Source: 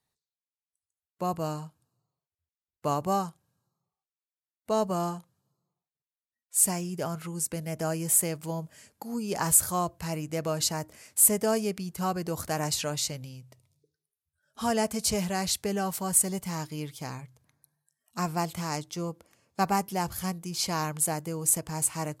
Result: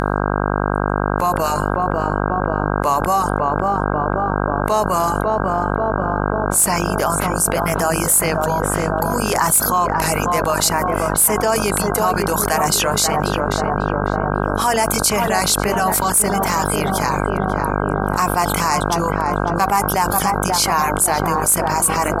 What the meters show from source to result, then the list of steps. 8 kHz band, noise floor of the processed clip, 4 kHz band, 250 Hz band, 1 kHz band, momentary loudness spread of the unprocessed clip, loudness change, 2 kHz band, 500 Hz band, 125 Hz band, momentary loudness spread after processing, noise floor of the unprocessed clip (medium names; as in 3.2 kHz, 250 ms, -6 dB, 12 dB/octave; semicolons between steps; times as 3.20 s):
+9.0 dB, -20 dBFS, +11.5 dB, +11.0 dB, +17.0 dB, 14 LU, +10.5 dB, +19.0 dB, +14.0 dB, +12.5 dB, 5 LU, under -85 dBFS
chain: de-hum 77.32 Hz, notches 12; on a send: filtered feedback delay 542 ms, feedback 73%, low-pass 900 Hz, level -3.5 dB; on the sum: vibrato 0.56 Hz 32 cents; hard clipper -17 dBFS, distortion -17 dB; graphic EQ 125/250/1000/2000/8000 Hz -5/-4/+9/+5/-4 dB; reverb removal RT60 0.63 s; mains buzz 50 Hz, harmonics 32, -37 dBFS -2 dB/octave; peaking EQ 10 kHz +12 dB 1.5 oct; level flattener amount 70%; trim -1.5 dB